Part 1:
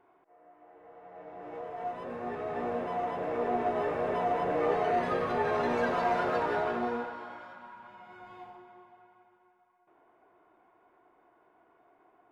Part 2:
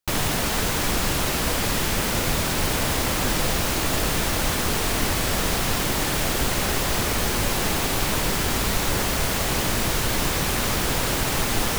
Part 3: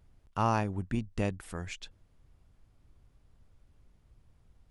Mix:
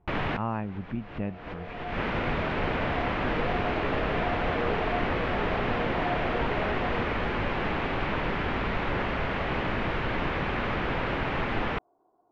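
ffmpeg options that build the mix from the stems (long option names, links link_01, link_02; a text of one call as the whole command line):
ffmpeg -i stem1.wav -i stem2.wav -i stem3.wav -filter_complex "[0:a]lowpass=frequency=1000:width=0.5412,lowpass=frequency=1000:width=1.3066,volume=-3.5dB[link_01];[1:a]lowshelf=frequency=150:gain=-4.5,volume=-2.5dB[link_02];[2:a]equalizer=frequency=190:width=2:gain=6.5,volume=-4dB,asplit=2[link_03][link_04];[link_04]apad=whole_len=519718[link_05];[link_02][link_05]sidechaincompress=threshold=-51dB:ratio=12:attack=6.3:release=198[link_06];[link_01][link_06][link_03]amix=inputs=3:normalize=0,lowpass=frequency=2600:width=0.5412,lowpass=frequency=2600:width=1.3066" out.wav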